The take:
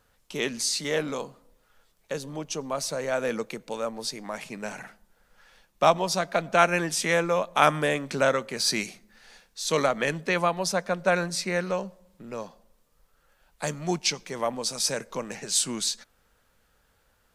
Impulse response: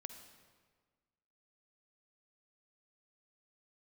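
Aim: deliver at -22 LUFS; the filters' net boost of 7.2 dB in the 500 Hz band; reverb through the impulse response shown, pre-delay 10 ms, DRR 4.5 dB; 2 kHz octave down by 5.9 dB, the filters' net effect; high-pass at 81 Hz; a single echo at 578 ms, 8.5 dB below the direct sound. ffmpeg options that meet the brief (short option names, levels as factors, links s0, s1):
-filter_complex "[0:a]highpass=81,equalizer=f=500:t=o:g=9,equalizer=f=2000:t=o:g=-8.5,aecho=1:1:578:0.376,asplit=2[s0][s1];[1:a]atrim=start_sample=2205,adelay=10[s2];[s1][s2]afir=irnorm=-1:irlink=0,volume=1[s3];[s0][s3]amix=inputs=2:normalize=0"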